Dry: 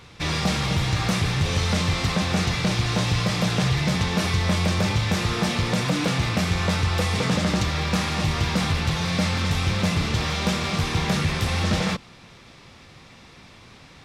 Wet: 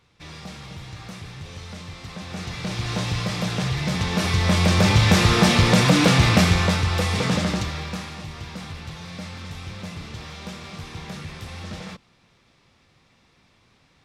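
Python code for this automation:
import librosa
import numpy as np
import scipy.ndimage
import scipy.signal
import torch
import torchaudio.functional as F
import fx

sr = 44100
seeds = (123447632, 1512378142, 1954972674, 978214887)

y = fx.gain(x, sr, db=fx.line((2.01, -15.0), (2.92, -3.0), (3.76, -3.0), (5.07, 7.0), (6.4, 7.0), (6.82, 0.5), (7.38, 0.5), (8.25, -12.5)))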